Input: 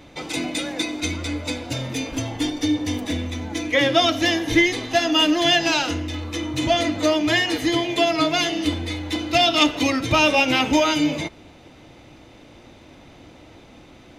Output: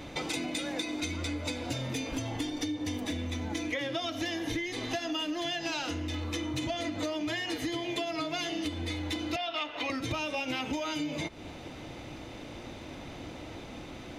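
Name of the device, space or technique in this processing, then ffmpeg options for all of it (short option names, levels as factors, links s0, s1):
serial compression, leveller first: -filter_complex "[0:a]asettb=1/sr,asplit=3[s0][s1][s2];[s0]atrim=end=9.364[s3];[s1]atrim=start=9.36:end=9.9,asetpts=PTS-STARTPTS,afade=t=in:d=0.004:c=qsin,afade=t=out:st=0.536:d=0.004:c=qsin,acrossover=split=500 3600:gain=0.158 1 0.112[s4][s5][s6];[s4][s5][s6]amix=inputs=3:normalize=0[s7];[s2]atrim=start=9.896[s8];[s3][s7]acrossfade=d=0.004:c1=hsin:c2=qsin[s9];[s9][s8]acrossfade=d=0.004:c1=qsin:c2=hsin,acompressor=threshold=0.0708:ratio=2.5,acompressor=threshold=0.0178:ratio=5,volume=1.41"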